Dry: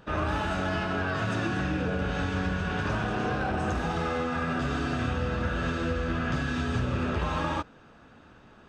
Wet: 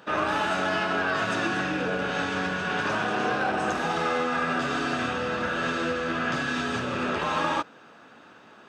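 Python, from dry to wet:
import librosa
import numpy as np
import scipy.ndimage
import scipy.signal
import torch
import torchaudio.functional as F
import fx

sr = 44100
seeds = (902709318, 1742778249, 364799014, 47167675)

y = scipy.signal.sosfilt(scipy.signal.butter(2, 190.0, 'highpass', fs=sr, output='sos'), x)
y = fx.low_shelf(y, sr, hz=400.0, db=-6.5)
y = F.gain(torch.from_numpy(y), 6.0).numpy()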